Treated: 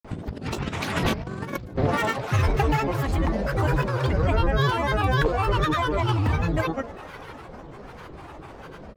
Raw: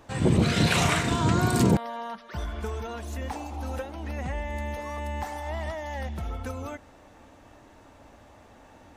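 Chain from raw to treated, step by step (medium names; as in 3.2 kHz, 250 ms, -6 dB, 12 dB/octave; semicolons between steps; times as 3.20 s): treble shelf 3.2 kHz -9.5 dB; on a send: two-band feedback delay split 640 Hz, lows 118 ms, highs 498 ms, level -15 dB; on the sum: granulator, pitch spread up and down by 12 st; compressor with a negative ratio -31 dBFS, ratio -0.5; trim +9 dB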